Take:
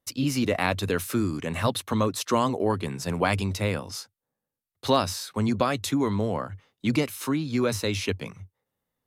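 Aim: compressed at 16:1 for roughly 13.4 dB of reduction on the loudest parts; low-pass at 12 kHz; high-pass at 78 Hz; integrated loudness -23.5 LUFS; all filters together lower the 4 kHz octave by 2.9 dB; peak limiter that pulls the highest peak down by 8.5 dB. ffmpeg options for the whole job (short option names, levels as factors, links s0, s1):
-af "highpass=78,lowpass=12000,equalizer=f=4000:t=o:g=-3.5,acompressor=threshold=0.0251:ratio=16,volume=6.31,alimiter=limit=0.224:level=0:latency=1"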